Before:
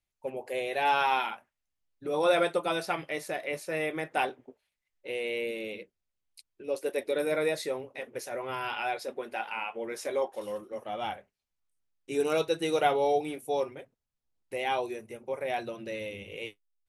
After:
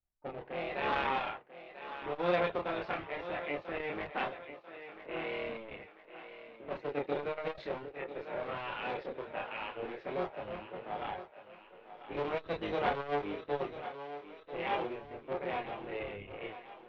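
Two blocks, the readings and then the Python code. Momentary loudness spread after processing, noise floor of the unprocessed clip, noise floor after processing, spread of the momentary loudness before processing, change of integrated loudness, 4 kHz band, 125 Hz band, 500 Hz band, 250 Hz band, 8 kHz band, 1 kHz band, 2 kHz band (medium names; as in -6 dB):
15 LU, under -85 dBFS, -58 dBFS, 14 LU, -6.0 dB, -7.5 dB, -0.5 dB, -6.5 dB, -4.5 dB, under -25 dB, -5.5 dB, -5.0 dB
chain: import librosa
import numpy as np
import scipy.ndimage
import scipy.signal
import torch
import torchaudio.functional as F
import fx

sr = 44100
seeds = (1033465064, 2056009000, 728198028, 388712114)

y = fx.cycle_switch(x, sr, every=3, mode='muted')
y = fx.env_lowpass(y, sr, base_hz=1400.0, full_db=-26.5)
y = fx.chorus_voices(y, sr, voices=6, hz=0.26, base_ms=29, depth_ms=1.6, mix_pct=45)
y = scipy.signal.sosfilt(scipy.signal.butter(4, 3300.0, 'lowpass', fs=sr, output='sos'), y)
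y = fx.echo_thinned(y, sr, ms=992, feedback_pct=47, hz=280.0, wet_db=-12.0)
y = fx.transformer_sat(y, sr, knee_hz=850.0)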